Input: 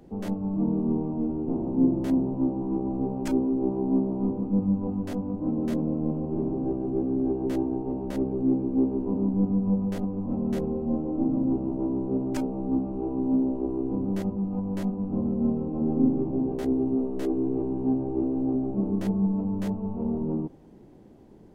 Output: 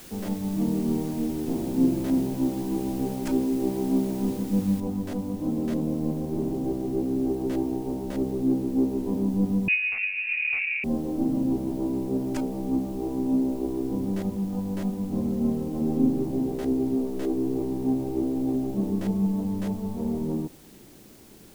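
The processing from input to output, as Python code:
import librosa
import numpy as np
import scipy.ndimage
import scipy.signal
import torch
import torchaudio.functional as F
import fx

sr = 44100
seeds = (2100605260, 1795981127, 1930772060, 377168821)

y = fx.noise_floor_step(x, sr, seeds[0], at_s=4.8, before_db=-47, after_db=-55, tilt_db=0.0)
y = fx.freq_invert(y, sr, carrier_hz=2700, at=(9.68, 10.84))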